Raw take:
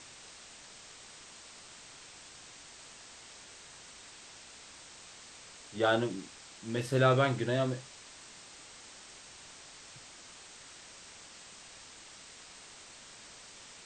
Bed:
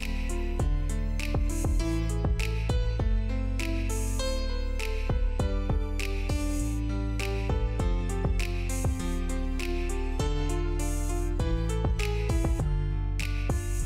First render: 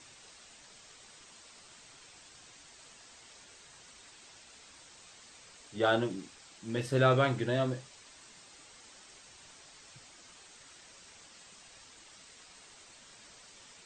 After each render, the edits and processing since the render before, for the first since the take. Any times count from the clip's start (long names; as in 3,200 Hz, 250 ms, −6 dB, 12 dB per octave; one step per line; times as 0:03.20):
broadband denoise 6 dB, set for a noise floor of −53 dBFS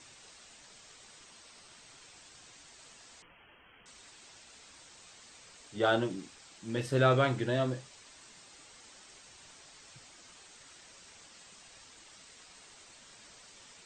0:01.27–0:01.88: notch filter 7,200 Hz
0:03.22–0:03.86: voice inversion scrambler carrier 3,200 Hz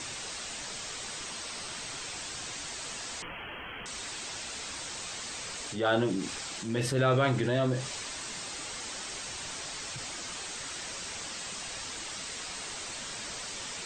transient designer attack −7 dB, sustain +2 dB
envelope flattener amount 50%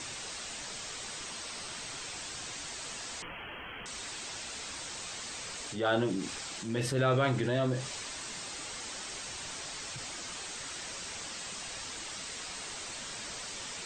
level −2 dB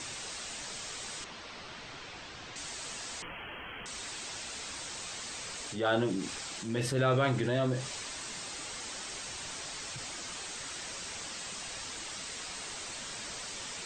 0:01.24–0:02.56: high-frequency loss of the air 170 metres